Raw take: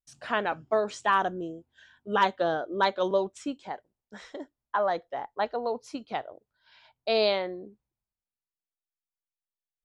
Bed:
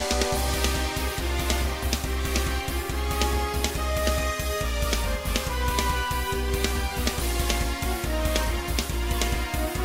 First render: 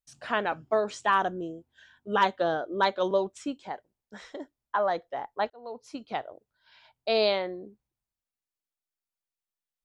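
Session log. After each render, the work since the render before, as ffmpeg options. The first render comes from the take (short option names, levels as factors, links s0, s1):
-filter_complex "[0:a]asplit=2[s0][s1];[s0]atrim=end=5.5,asetpts=PTS-STARTPTS,afade=t=out:st=5.496:d=0.004:c=hsin[s2];[s1]atrim=start=5.5,asetpts=PTS-STARTPTS,afade=t=in:d=0.58[s3];[s2][s3]concat=n=2:v=0:a=1"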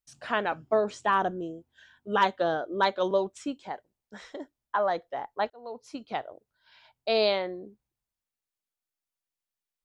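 -filter_complex "[0:a]asettb=1/sr,asplit=3[s0][s1][s2];[s0]atrim=end=0.714[s3];[s1]atrim=start=0.71:end=1.31,asetpts=PTS-STARTPTS,afade=t=in:d=0.004:c=qsin,afade=t=out:st=0.596:d=0.004:c=qsin,tiltshelf=f=830:g=3.5[s4];[s2]atrim=start=1.306[s5];[s3][s4]acrossfade=d=0.004:c1=hsin:c2=qsin[s6];[s6][s5]acrossfade=d=0.004:c1=qsin:c2=hsin"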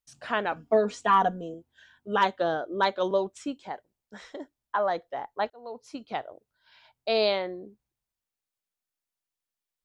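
-filter_complex "[0:a]asettb=1/sr,asplit=3[s0][s1][s2];[s0]atrim=end=0.564[s3];[s1]atrim=start=0.56:end=1.54,asetpts=PTS-STARTPTS,afade=t=in:d=0.004:c=qsin,afade=t=out:st=0.976:d=0.004:c=qsin,aecho=1:1:4.2:0.86,atrim=end_sample=43218[s4];[s2]atrim=start=1.536[s5];[s3][s4]acrossfade=d=0.004:c1=hsin:c2=qsin[s6];[s6][s5]acrossfade=d=0.004:c1=qsin:c2=hsin"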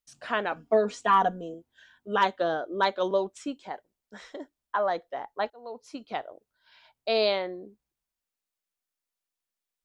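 -af "equalizer=f=100:t=o:w=1.1:g=-7.5,bandreject=f=840:w=26"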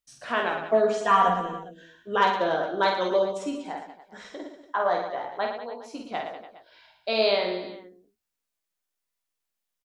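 -filter_complex "[0:a]asplit=2[s0][s1];[s1]adelay=17,volume=0.447[s2];[s0][s2]amix=inputs=2:normalize=0,aecho=1:1:50|112.5|190.6|288.3|410.4:0.631|0.398|0.251|0.158|0.1"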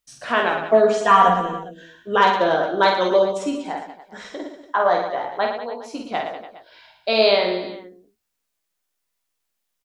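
-af "volume=2.11,alimiter=limit=0.708:level=0:latency=1"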